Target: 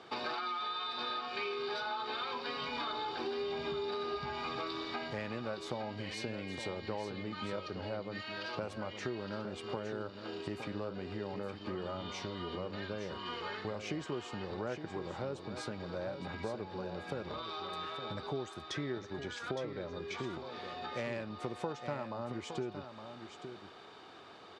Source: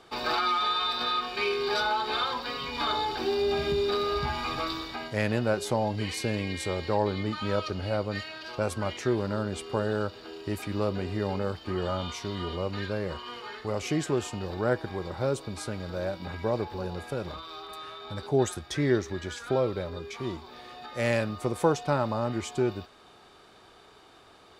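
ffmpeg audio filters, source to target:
-filter_complex "[0:a]acompressor=threshold=-37dB:ratio=6,highpass=120,lowpass=5k,asplit=2[a][b];[b]aecho=0:1:864:0.355[c];[a][c]amix=inputs=2:normalize=0,volume=1dB"

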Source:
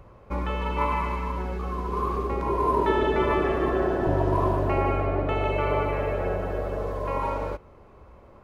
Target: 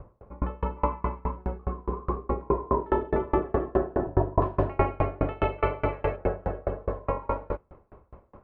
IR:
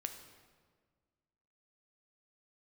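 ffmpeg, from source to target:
-af "asetnsamples=n=441:p=0,asendcmd='4.42 lowpass f 2800;6.16 lowpass f 1600',lowpass=1.1k,aeval=exprs='val(0)*pow(10,-32*if(lt(mod(4.8*n/s,1),2*abs(4.8)/1000),1-mod(4.8*n/s,1)/(2*abs(4.8)/1000),(mod(4.8*n/s,1)-2*abs(4.8)/1000)/(1-2*abs(4.8)/1000))/20)':c=same,volume=6.5dB"

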